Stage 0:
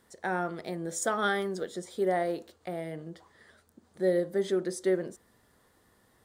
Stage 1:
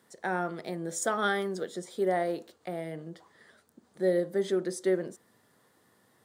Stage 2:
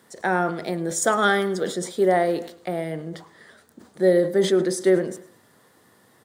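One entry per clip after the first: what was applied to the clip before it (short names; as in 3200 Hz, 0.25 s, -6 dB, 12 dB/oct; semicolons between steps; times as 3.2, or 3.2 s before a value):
HPF 110 Hz 24 dB/oct
feedback echo 0.105 s, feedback 39%, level -18.5 dB; sustainer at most 120 dB/s; gain +8.5 dB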